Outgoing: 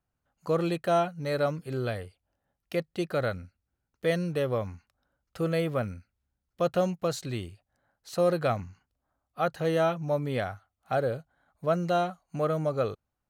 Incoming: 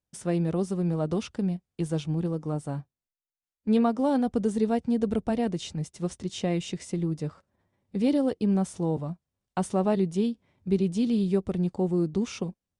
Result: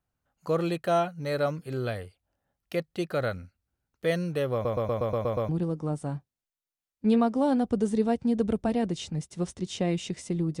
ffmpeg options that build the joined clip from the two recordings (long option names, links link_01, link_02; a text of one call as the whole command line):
ffmpeg -i cue0.wav -i cue1.wav -filter_complex "[0:a]apad=whole_dur=10.6,atrim=end=10.6,asplit=8[link_01][link_02][link_03][link_04][link_05][link_06][link_07][link_08];[link_01]atrim=end=4.652[link_09];[link_02]atrim=start=4.528:end=4.652[link_10];[link_03]atrim=start=4.528:end=4.652[link_11];[link_04]atrim=start=4.528:end=4.652[link_12];[link_05]atrim=start=4.528:end=4.652[link_13];[link_06]atrim=start=4.528:end=4.652[link_14];[link_07]atrim=start=4.528:end=4.652[link_15];[link_08]atrim=start=4.528:end=4.652[link_16];[1:a]atrim=start=2.118:end=7.23[link_17];[link_09][link_10]acrossfade=duration=0.004:curve1=hsin:curve2=hsin[link_18];[link_18][link_11]acrossfade=duration=0.004:curve1=hsin:curve2=hsin[link_19];[link_19][link_12]acrossfade=duration=0.004:curve1=hsin:curve2=hsin[link_20];[link_20][link_13]acrossfade=duration=0.004:curve1=hsin:curve2=hsin[link_21];[link_21][link_14]acrossfade=duration=0.004:curve1=hsin:curve2=hsin[link_22];[link_22][link_15]acrossfade=duration=0.004:curve1=hsin:curve2=hsin[link_23];[link_23][link_16]acrossfade=duration=0.004:curve1=hsin:curve2=hsin[link_24];[link_24][link_17]acrossfade=duration=0.004:curve1=hsin:curve2=hsin" out.wav